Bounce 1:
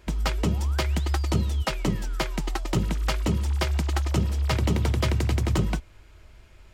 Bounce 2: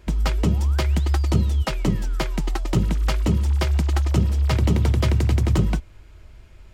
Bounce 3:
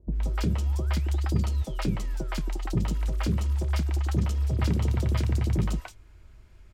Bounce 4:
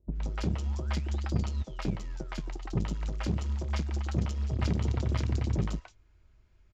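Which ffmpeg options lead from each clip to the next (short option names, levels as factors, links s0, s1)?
-af "lowshelf=f=360:g=5.5"
-filter_complex "[0:a]acrossover=split=600|3100[s0][s1][s2];[s1]adelay=120[s3];[s2]adelay=150[s4];[s0][s3][s4]amix=inputs=3:normalize=0,volume=0.501"
-af "aresample=16000,aresample=44100,aeval=exprs='0.224*(cos(1*acos(clip(val(0)/0.224,-1,1)))-cos(1*PI/2))+0.0178*(cos(7*acos(clip(val(0)/0.224,-1,1)))-cos(7*PI/2))':c=same,volume=0.668"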